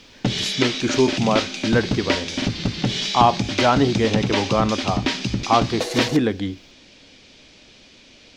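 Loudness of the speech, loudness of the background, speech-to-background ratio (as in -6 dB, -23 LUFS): -22.0 LUFS, -23.5 LUFS, 1.5 dB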